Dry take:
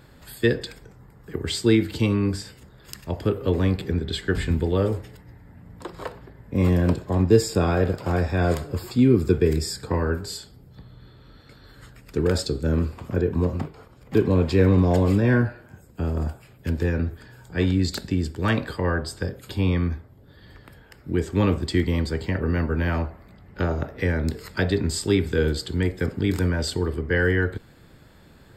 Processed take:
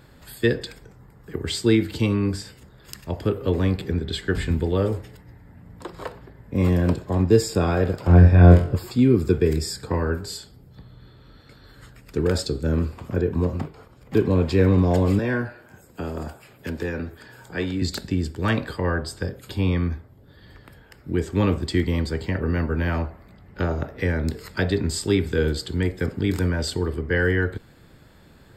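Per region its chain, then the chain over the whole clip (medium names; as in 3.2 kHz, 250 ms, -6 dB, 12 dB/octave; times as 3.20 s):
8.07–8.76 s: tone controls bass +7 dB, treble -12 dB + flutter echo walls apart 3.9 m, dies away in 0.3 s
15.19–17.82 s: bass shelf 180 Hz -12 dB + three bands compressed up and down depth 40%
whole clip: none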